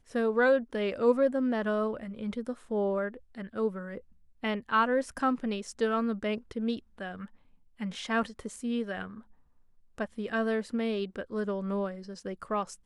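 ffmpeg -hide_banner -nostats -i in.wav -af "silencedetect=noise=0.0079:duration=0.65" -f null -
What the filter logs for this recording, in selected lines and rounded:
silence_start: 9.20
silence_end: 9.98 | silence_duration: 0.78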